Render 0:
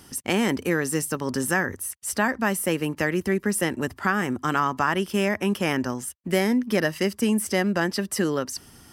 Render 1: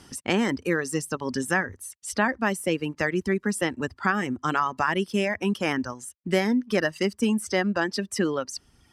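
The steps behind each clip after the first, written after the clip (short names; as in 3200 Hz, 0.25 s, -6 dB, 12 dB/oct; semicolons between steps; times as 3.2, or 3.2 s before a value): reverb removal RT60 1.6 s; LPF 7700 Hz 12 dB/oct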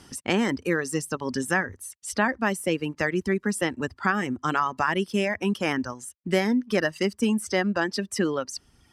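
nothing audible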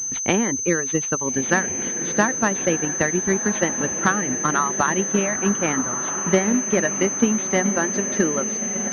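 diffused feedback echo 1.336 s, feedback 51%, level -7.5 dB; transient shaper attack +5 dB, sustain -2 dB; pulse-width modulation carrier 6200 Hz; gain +1.5 dB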